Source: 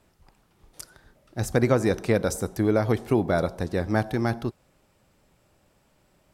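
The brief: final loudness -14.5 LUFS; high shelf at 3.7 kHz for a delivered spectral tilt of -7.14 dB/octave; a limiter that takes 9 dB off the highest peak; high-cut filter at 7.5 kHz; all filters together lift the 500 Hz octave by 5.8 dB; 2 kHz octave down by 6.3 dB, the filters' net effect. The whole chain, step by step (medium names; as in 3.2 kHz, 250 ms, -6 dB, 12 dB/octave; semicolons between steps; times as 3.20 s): low-pass 7.5 kHz; peaking EQ 500 Hz +7.5 dB; peaking EQ 2 kHz -8 dB; treble shelf 3.7 kHz -5.5 dB; trim +10.5 dB; peak limiter -2 dBFS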